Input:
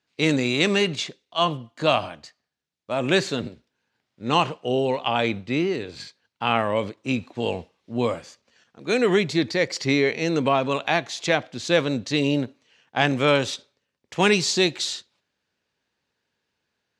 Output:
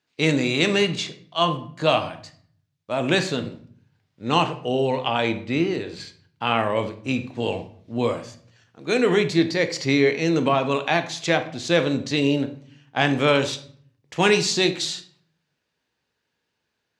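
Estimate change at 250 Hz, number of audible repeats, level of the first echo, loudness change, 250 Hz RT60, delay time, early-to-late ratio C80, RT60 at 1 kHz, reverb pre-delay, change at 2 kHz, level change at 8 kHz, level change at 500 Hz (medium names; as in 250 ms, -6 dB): +1.5 dB, no echo, no echo, +1.0 dB, 0.80 s, no echo, 17.0 dB, 0.50 s, 6 ms, +0.5 dB, +0.5 dB, +1.0 dB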